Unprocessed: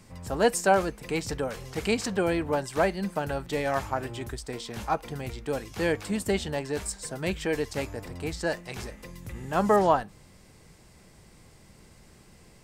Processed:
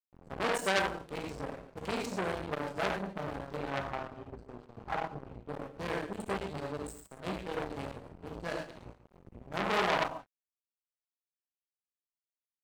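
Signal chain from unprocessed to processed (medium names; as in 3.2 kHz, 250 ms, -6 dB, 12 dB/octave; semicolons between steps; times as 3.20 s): local Wiener filter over 25 samples; reverberation, pre-delay 3 ms, DRR -2 dB; crossover distortion -35 dBFS; 3.56–5.79 s: treble shelf 4.1 kHz -8 dB; multi-tap echo 53/138 ms -18.5/-16 dB; transformer saturation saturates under 3.1 kHz; trim -4.5 dB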